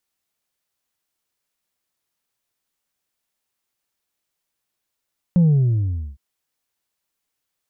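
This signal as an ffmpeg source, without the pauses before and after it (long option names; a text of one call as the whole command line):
ffmpeg -f lavfi -i "aevalsrc='0.282*clip((0.81-t)/0.8,0,1)*tanh(1.26*sin(2*PI*180*0.81/log(65/180)*(exp(log(65/180)*t/0.81)-1)))/tanh(1.26)':duration=0.81:sample_rate=44100" out.wav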